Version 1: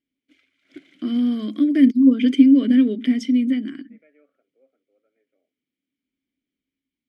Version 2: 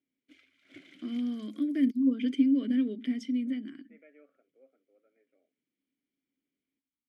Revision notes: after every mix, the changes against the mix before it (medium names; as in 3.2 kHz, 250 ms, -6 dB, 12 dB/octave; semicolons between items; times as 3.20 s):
first voice -12.0 dB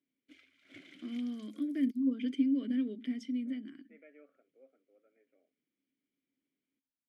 first voice -5.0 dB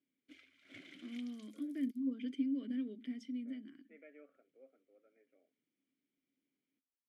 first voice -6.5 dB